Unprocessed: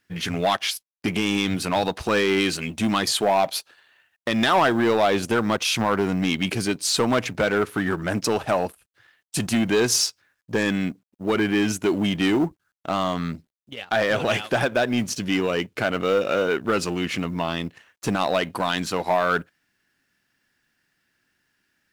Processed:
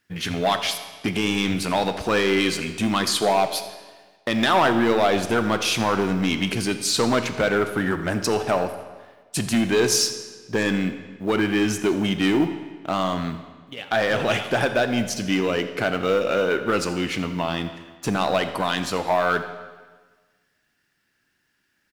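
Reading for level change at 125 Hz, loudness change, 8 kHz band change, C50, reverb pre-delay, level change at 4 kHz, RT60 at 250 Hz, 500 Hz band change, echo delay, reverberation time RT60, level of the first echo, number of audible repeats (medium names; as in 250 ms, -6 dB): +0.5 dB, +0.5 dB, +0.5 dB, 10.0 dB, 21 ms, +0.5 dB, 1.4 s, +0.5 dB, 84 ms, 1.4 s, -18.5 dB, 1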